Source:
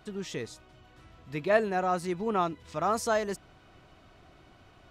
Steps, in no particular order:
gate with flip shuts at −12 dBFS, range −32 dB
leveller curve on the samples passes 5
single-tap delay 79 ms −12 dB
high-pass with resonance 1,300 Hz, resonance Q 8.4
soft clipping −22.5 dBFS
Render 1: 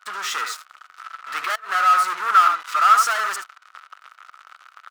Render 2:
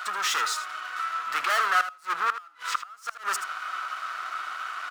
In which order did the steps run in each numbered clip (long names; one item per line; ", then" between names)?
single-tap delay, then leveller curve on the samples, then gate with flip, then soft clipping, then high-pass with resonance
soft clipping, then leveller curve on the samples, then high-pass with resonance, then gate with flip, then single-tap delay